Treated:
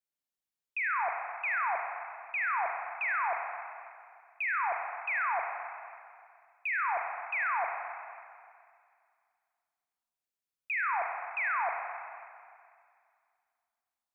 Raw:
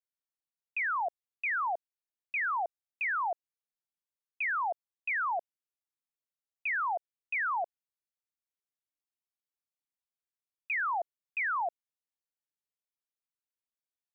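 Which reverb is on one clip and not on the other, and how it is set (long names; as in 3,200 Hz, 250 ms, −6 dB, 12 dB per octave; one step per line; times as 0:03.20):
four-comb reverb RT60 2.2 s, combs from 32 ms, DRR 2 dB
level −1 dB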